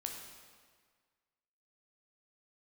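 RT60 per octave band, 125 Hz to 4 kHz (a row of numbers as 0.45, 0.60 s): 1.6, 1.6, 1.7, 1.7, 1.6, 1.4 s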